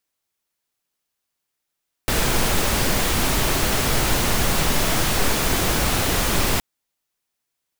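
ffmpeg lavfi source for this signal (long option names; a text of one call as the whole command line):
ffmpeg -f lavfi -i "anoisesrc=color=pink:amplitude=0.543:duration=4.52:sample_rate=44100:seed=1" out.wav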